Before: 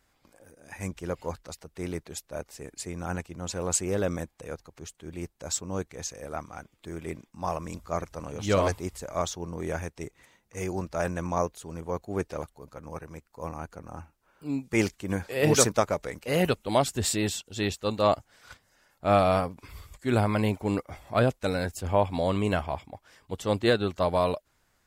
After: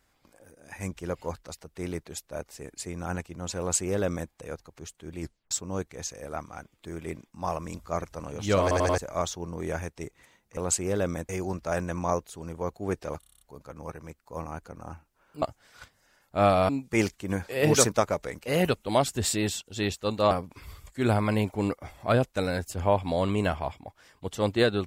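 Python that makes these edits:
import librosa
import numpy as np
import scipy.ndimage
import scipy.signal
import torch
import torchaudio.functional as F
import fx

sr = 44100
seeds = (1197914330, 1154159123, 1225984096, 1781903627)

y = fx.edit(x, sr, fx.duplicate(start_s=3.59, length_s=0.72, to_s=10.57),
    fx.tape_stop(start_s=5.21, length_s=0.3),
    fx.stutter_over(start_s=8.62, slice_s=0.09, count=4),
    fx.stutter(start_s=12.48, slice_s=0.03, count=8),
    fx.move(start_s=18.11, length_s=1.27, to_s=14.49), tone=tone)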